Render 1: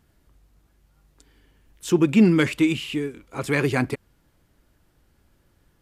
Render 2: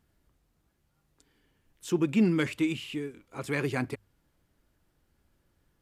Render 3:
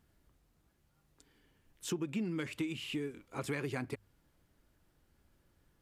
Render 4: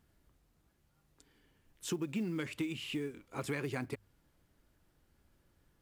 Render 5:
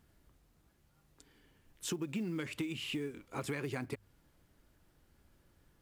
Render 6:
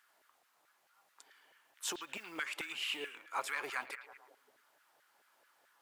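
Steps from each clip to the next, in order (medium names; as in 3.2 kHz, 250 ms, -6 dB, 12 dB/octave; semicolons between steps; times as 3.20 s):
hum notches 50/100 Hz; trim -8 dB
compression 10:1, threshold -33 dBFS, peak gain reduction 14.5 dB
short-mantissa float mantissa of 4-bit
compression 2:1, threshold -40 dBFS, peak gain reduction 5.5 dB; trim +3 dB
repeats whose band climbs or falls 110 ms, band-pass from 3 kHz, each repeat -0.7 oct, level -9.5 dB; LFO high-pass saw down 4.6 Hz 610–1600 Hz; trim +2 dB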